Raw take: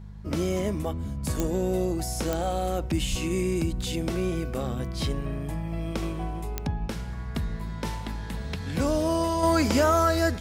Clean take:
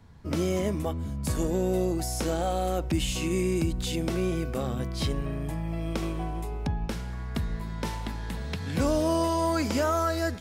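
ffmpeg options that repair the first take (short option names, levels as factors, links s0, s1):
-filter_complex "[0:a]adeclick=t=4,bandreject=f=50.8:t=h:w=4,bandreject=f=101.6:t=h:w=4,bandreject=f=152.4:t=h:w=4,bandreject=f=203.2:t=h:w=4,asplit=3[s0][s1][s2];[s0]afade=t=out:st=3.1:d=0.02[s3];[s1]highpass=f=140:w=0.5412,highpass=f=140:w=1.3066,afade=t=in:st=3.1:d=0.02,afade=t=out:st=3.22:d=0.02[s4];[s2]afade=t=in:st=3.22:d=0.02[s5];[s3][s4][s5]amix=inputs=3:normalize=0,asetnsamples=n=441:p=0,asendcmd='9.43 volume volume -4.5dB',volume=1"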